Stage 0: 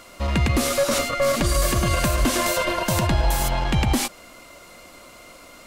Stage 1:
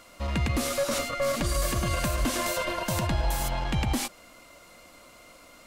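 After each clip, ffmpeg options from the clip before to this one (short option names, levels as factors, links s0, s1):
-af "bandreject=f=380:w=12,volume=0.473"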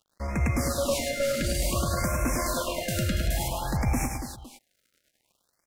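-filter_complex "[0:a]aeval=exprs='sgn(val(0))*max(abs(val(0))-0.00562,0)':c=same,asplit=2[s0][s1];[s1]aecho=0:1:103|214|284|510:0.562|0.211|0.376|0.141[s2];[s0][s2]amix=inputs=2:normalize=0,afftfilt=real='re*(1-between(b*sr/1024,880*pow(3800/880,0.5+0.5*sin(2*PI*0.56*pts/sr))/1.41,880*pow(3800/880,0.5+0.5*sin(2*PI*0.56*pts/sr))*1.41))':imag='im*(1-between(b*sr/1024,880*pow(3800/880,0.5+0.5*sin(2*PI*0.56*pts/sr))/1.41,880*pow(3800/880,0.5+0.5*sin(2*PI*0.56*pts/sr))*1.41))':win_size=1024:overlap=0.75"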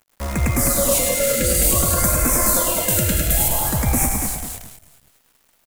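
-filter_complex "[0:a]asplit=5[s0][s1][s2][s3][s4];[s1]adelay=206,afreqshift=-48,volume=0.501[s5];[s2]adelay=412,afreqshift=-96,volume=0.18[s6];[s3]adelay=618,afreqshift=-144,volume=0.0653[s7];[s4]adelay=824,afreqshift=-192,volume=0.0234[s8];[s0][s5][s6][s7][s8]amix=inputs=5:normalize=0,aexciter=amount=4.5:drive=3.6:freq=7100,acrusher=bits=7:dc=4:mix=0:aa=0.000001,volume=1.88"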